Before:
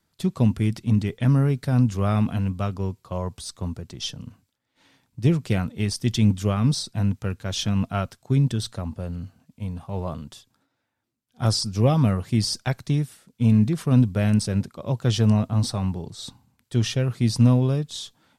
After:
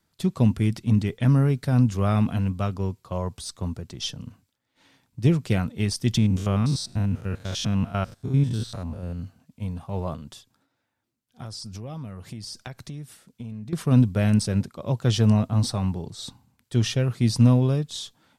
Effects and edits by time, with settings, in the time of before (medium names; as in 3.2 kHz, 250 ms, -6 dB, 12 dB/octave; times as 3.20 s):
6.17–9.20 s: spectrogram pixelated in time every 100 ms
10.15–13.73 s: compression, threshold -34 dBFS